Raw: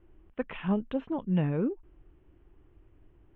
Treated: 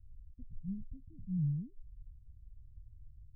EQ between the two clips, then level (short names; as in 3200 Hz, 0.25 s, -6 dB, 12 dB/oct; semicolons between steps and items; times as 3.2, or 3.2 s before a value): inverse Chebyshev low-pass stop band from 710 Hz, stop band 80 dB; +6.0 dB